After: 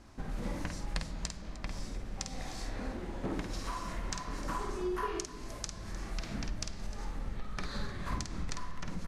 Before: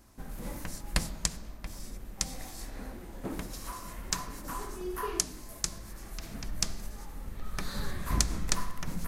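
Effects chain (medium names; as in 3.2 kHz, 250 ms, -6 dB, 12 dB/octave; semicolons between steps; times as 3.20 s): compression 6:1, threshold -36 dBFS, peak gain reduction 15.5 dB; low-pass 5.3 kHz 12 dB/octave; multi-tap echo 50/305 ms -6/-16.5 dB; trim +4 dB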